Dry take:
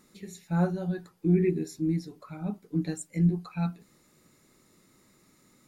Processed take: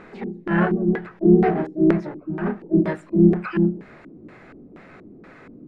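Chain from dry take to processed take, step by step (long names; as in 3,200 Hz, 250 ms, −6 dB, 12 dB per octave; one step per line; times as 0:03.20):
pitch-shifted copies added +3 semitones −2 dB, +12 semitones −2 dB
power curve on the samples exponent 0.7
auto-filter low-pass square 2.1 Hz 310–1,800 Hz
level −1.5 dB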